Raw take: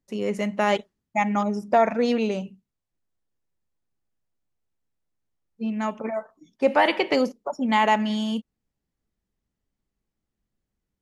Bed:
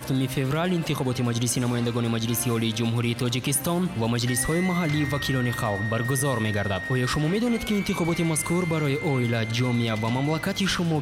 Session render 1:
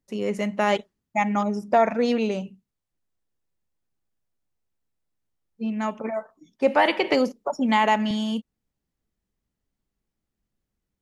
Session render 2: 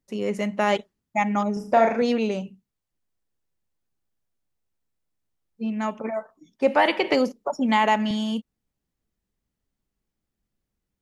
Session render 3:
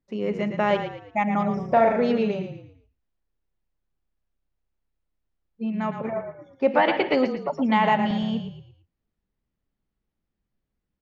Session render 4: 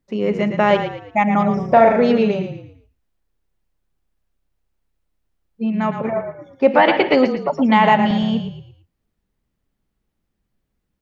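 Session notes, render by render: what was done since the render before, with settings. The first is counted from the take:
7.04–8.11 three-band squash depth 40%
1.53–2.02 flutter echo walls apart 6.1 m, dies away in 0.4 s
air absorption 200 m; frequency-shifting echo 0.113 s, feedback 37%, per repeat -33 Hz, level -8 dB
gain +7 dB; limiter -1 dBFS, peak gain reduction 1 dB

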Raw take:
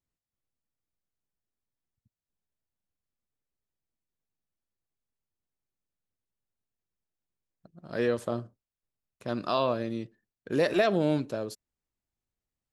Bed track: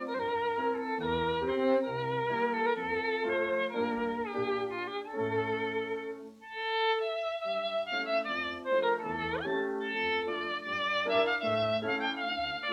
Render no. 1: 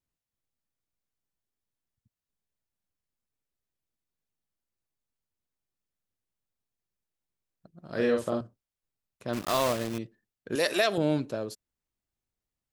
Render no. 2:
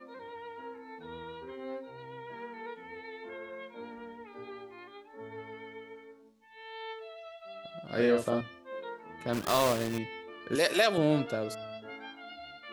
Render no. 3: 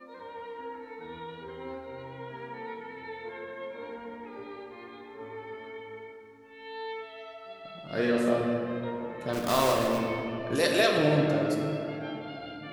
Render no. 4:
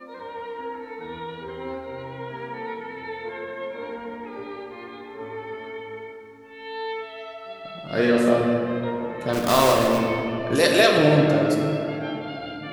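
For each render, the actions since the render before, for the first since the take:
7.9–8.41 doubler 46 ms -3.5 dB; 9.33–10 block floating point 3-bit; 10.55–10.98 RIAA curve recording
add bed track -13 dB
shoebox room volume 140 m³, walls hard, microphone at 0.42 m
gain +7 dB

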